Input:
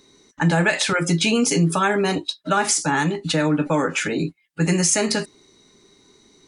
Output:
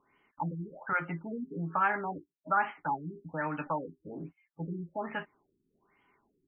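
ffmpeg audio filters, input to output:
ffmpeg -i in.wav -filter_complex "[0:a]equalizer=frequency=7400:width=0.39:gain=7.5,acrossover=split=2100[link_01][link_02];[link_02]acompressor=threshold=-38dB:ratio=6[link_03];[link_01][link_03]amix=inputs=2:normalize=0,lowshelf=frequency=620:width_type=q:width=1.5:gain=-9,afftfilt=real='re*lt(b*sr/1024,400*pow(3300/400,0.5+0.5*sin(2*PI*1.2*pts/sr)))':imag='im*lt(b*sr/1024,400*pow(3300/400,0.5+0.5*sin(2*PI*1.2*pts/sr)))':win_size=1024:overlap=0.75,volume=-8dB" out.wav

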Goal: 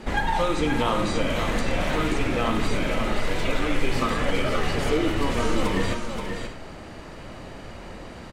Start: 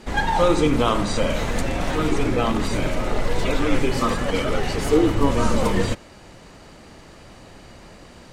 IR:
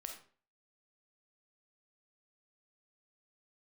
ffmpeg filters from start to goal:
-filter_complex "[0:a]acrossover=split=1700|7900[link_01][link_02][link_03];[link_01]acompressor=threshold=-27dB:ratio=4[link_04];[link_02]acompressor=threshold=-34dB:ratio=4[link_05];[link_03]acompressor=threshold=-47dB:ratio=4[link_06];[link_04][link_05][link_06]amix=inputs=3:normalize=0,aecho=1:1:528|596:0.473|0.188,asplit=2[link_07][link_08];[1:a]atrim=start_sample=2205,lowpass=3800[link_09];[link_08][link_09]afir=irnorm=-1:irlink=0,volume=3.5dB[link_10];[link_07][link_10]amix=inputs=2:normalize=0,volume=-1.5dB"

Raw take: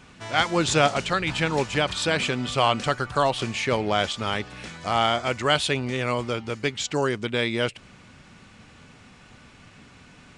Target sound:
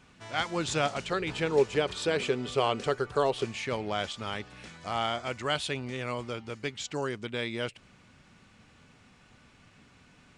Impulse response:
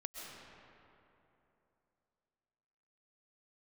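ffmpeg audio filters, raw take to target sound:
-filter_complex "[0:a]asettb=1/sr,asplit=3[link_01][link_02][link_03];[link_01]atrim=end=1.104[link_04];[link_02]atrim=start=1.1:end=3.45,asetpts=PTS-STARTPTS,afade=type=in:duration=0.004:curve=qsin,afade=type=out:start_time=2.346:duration=0.004:curve=qsin,equalizer=frequency=420:width=2.9:gain=14[link_05];[link_03]atrim=start=3.446[link_06];[link_04][link_05]acrossfade=duration=0.004:curve1=hsin:curve2=qsin[link_07];[link_07][link_06]acrossfade=duration=0.004:curve1=qsin:curve2=hsin,volume=-8.5dB"

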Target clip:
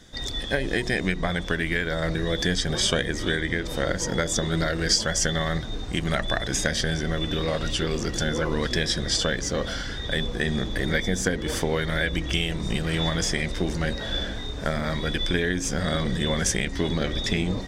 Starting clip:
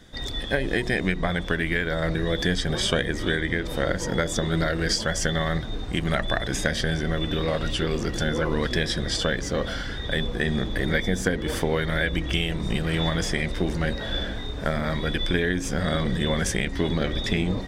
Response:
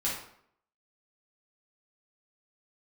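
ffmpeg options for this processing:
-af "equalizer=frequency=6300:width=1.1:gain=7,volume=-1dB"

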